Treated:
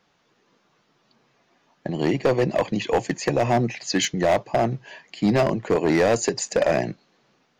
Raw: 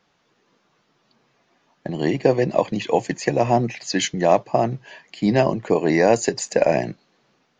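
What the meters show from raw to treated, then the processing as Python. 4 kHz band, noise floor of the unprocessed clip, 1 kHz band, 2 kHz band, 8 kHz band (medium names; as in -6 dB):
0.0 dB, -66 dBFS, -3.0 dB, -0.5 dB, 0.0 dB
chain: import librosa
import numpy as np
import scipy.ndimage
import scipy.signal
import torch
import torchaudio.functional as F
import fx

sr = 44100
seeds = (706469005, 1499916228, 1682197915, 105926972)

y = np.clip(x, -10.0 ** (-13.5 / 20.0), 10.0 ** (-13.5 / 20.0))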